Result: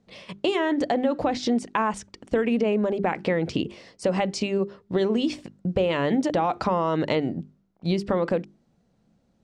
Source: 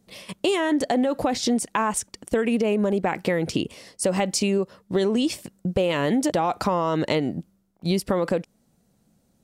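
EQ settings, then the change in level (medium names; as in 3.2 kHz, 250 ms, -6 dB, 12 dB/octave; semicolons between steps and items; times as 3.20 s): distance through air 130 m; hum notches 50/100/150/200/250/300/350/400 Hz; 0.0 dB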